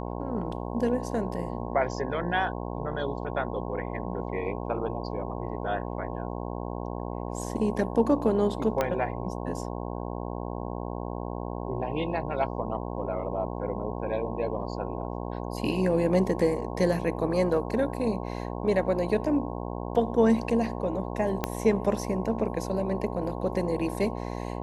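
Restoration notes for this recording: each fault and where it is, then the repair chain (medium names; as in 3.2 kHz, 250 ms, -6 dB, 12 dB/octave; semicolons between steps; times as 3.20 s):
buzz 60 Hz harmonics 18 -34 dBFS
8.81 s: pop -12 dBFS
21.44 s: pop -11 dBFS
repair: de-click; de-hum 60 Hz, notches 18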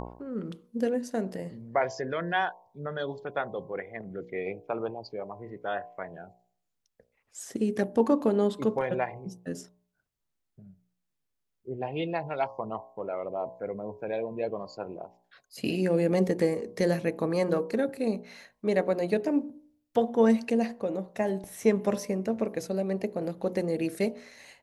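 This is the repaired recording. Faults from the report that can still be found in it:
8.81 s: pop
21.44 s: pop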